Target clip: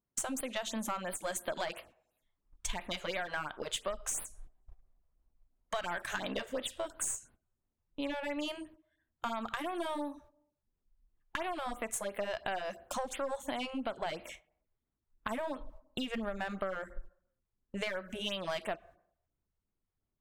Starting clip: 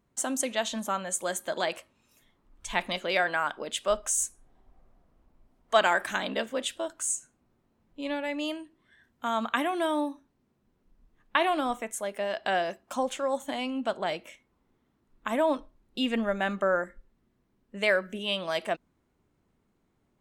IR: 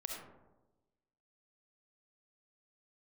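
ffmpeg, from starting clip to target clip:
-filter_complex "[0:a]agate=range=0.0891:threshold=0.00224:ratio=16:detection=peak,asubboost=boost=3:cutoff=100,asplit=2[s0][s1];[1:a]atrim=start_sample=2205,asetrate=83790,aresample=44100[s2];[s1][s2]afir=irnorm=-1:irlink=0,volume=0.211[s3];[s0][s3]amix=inputs=2:normalize=0,aeval=exprs='0.398*(cos(1*acos(clip(val(0)/0.398,-1,1)))-cos(1*PI/2))+0.0316*(cos(2*acos(clip(val(0)/0.398,-1,1)))-cos(2*PI/2))+0.00398*(cos(3*acos(clip(val(0)/0.398,-1,1)))-cos(3*PI/2))+0.0355*(cos(6*acos(clip(val(0)/0.398,-1,1)))-cos(6*PI/2))+0.00891*(cos(7*acos(clip(val(0)/0.398,-1,1)))-cos(7*PI/2))':c=same,asplit=2[s4][s5];[s5]volume=22.4,asoftclip=hard,volume=0.0447,volume=0.596[s6];[s4][s6]amix=inputs=2:normalize=0,alimiter=limit=0.15:level=0:latency=1:release=431,acompressor=threshold=0.0251:ratio=8,afftfilt=real='re*(1-between(b*sr/1024,220*pow(7200/220,0.5+0.5*sin(2*PI*2.9*pts/sr))/1.41,220*pow(7200/220,0.5+0.5*sin(2*PI*2.9*pts/sr))*1.41))':imag='im*(1-between(b*sr/1024,220*pow(7200/220,0.5+0.5*sin(2*PI*2.9*pts/sr))/1.41,220*pow(7200/220,0.5+0.5*sin(2*PI*2.9*pts/sr))*1.41))':win_size=1024:overlap=0.75"

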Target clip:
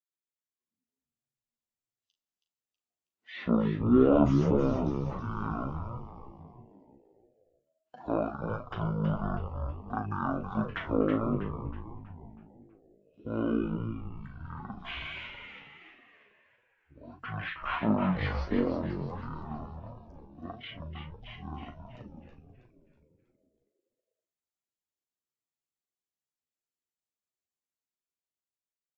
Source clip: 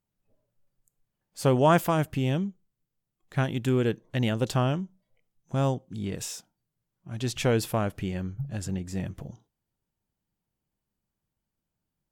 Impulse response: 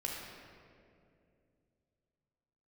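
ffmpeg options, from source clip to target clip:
-filter_complex "[0:a]acrossover=split=5800[s0][s1];[s1]acompressor=threshold=0.00355:ratio=4:attack=1:release=60[s2];[s0][s2]amix=inputs=2:normalize=0,asetrate=18434,aresample=44100,afftdn=nr=15:nf=-47,asplit=2[s3][s4];[s4]adelay=38,volume=0.398[s5];[s3][s5]amix=inputs=2:normalize=0,dynaudnorm=f=120:g=17:m=1.68,highpass=230,asplit=2[s6][s7];[s7]asplit=6[s8][s9][s10][s11][s12][s13];[s8]adelay=322,afreqshift=-120,volume=0.473[s14];[s9]adelay=644,afreqshift=-240,volume=0.226[s15];[s10]adelay=966,afreqshift=-360,volume=0.108[s16];[s11]adelay=1288,afreqshift=-480,volume=0.0525[s17];[s12]adelay=1610,afreqshift=-600,volume=0.0251[s18];[s13]adelay=1932,afreqshift=-720,volume=0.012[s19];[s14][s15][s16][s17][s18][s19]amix=inputs=6:normalize=0[s20];[s6][s20]amix=inputs=2:normalize=0,flanger=delay=8:depth=6.6:regen=18:speed=1.5:shape=sinusoidal"

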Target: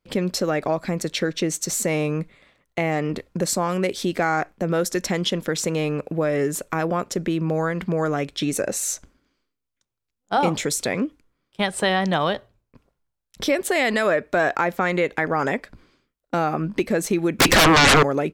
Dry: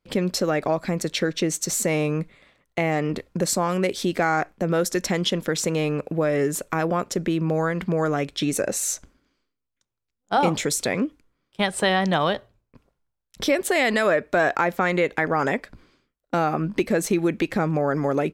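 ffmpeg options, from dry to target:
-filter_complex "[0:a]asettb=1/sr,asplit=3[s0][s1][s2];[s0]atrim=end=17.394[s3];[s1]atrim=start=17.39:end=18.03,asetpts=PTS-STARTPTS,afade=t=in:d=0.004:c=qsin,afade=t=out:st=0.636:d=0.004:c=qsin,aeval=exprs='0.299*sin(PI/2*10*val(0)/0.299)':c=same[s4];[s2]atrim=start=18.026[s5];[s3][s4]acrossfade=d=0.004:c1=hsin:c2=qsin[s6];[s6][s5]acrossfade=d=0.004:c1=qsin:c2=hsin"

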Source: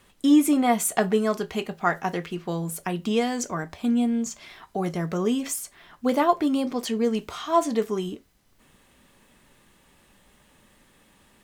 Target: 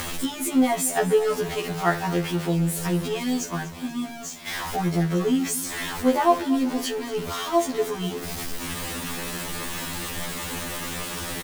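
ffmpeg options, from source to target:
-filter_complex "[0:a]aeval=exprs='val(0)+0.5*0.0501*sgn(val(0))':c=same,asplit=3[s0][s1][s2];[s0]afade=t=out:st=3.4:d=0.02[s3];[s1]agate=range=0.0224:threshold=0.0794:ratio=3:detection=peak,afade=t=in:st=3.4:d=0.02,afade=t=out:st=4.46:d=0.02[s4];[s2]afade=t=in:st=4.46:d=0.02[s5];[s3][s4][s5]amix=inputs=3:normalize=0,acompressor=mode=upward:threshold=0.0447:ratio=2.5,aecho=1:1:241|482|723|964|1205:0.15|0.0778|0.0405|0.021|0.0109,afftfilt=real='re*2*eq(mod(b,4),0)':imag='im*2*eq(mod(b,4),0)':win_size=2048:overlap=0.75"

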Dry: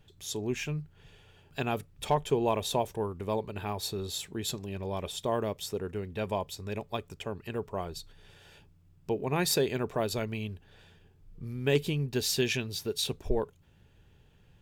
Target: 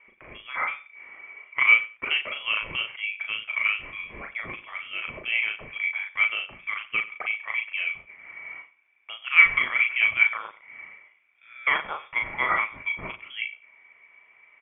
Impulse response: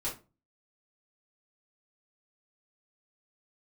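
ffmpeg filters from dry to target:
-filter_complex "[0:a]highpass=f=1400:t=q:w=16,asplit=2[s0][s1];[s1]aecho=0:1:92|184:0.126|0.0227[s2];[s0][s2]amix=inputs=2:normalize=0,lowpass=f=3100:t=q:w=0.5098,lowpass=f=3100:t=q:w=0.6013,lowpass=f=3100:t=q:w=0.9,lowpass=f=3100:t=q:w=2.563,afreqshift=-3700,asplit=2[s3][s4];[s4]adelay=37,volume=0.631[s5];[s3][s5]amix=inputs=2:normalize=0,volume=1.78"

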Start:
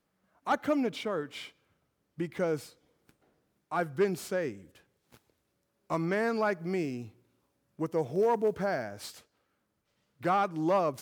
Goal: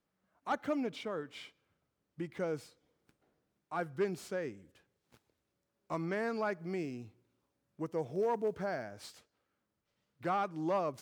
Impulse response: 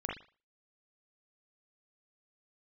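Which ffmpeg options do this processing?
-af "equalizer=f=13000:w=1:g=-6,volume=0.501"

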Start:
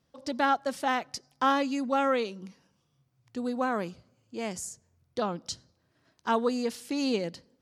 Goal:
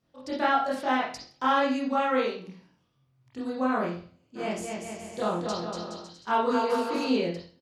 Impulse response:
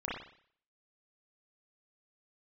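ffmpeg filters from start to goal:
-filter_complex "[0:a]asplit=3[s0][s1][s2];[s0]afade=t=out:st=4.35:d=0.02[s3];[s1]aecho=1:1:240|420|555|656.2|732.2:0.631|0.398|0.251|0.158|0.1,afade=t=in:st=4.35:d=0.02,afade=t=out:st=7.04:d=0.02[s4];[s2]afade=t=in:st=7.04:d=0.02[s5];[s3][s4][s5]amix=inputs=3:normalize=0[s6];[1:a]atrim=start_sample=2205,asetrate=57330,aresample=44100[s7];[s6][s7]afir=irnorm=-1:irlink=0"

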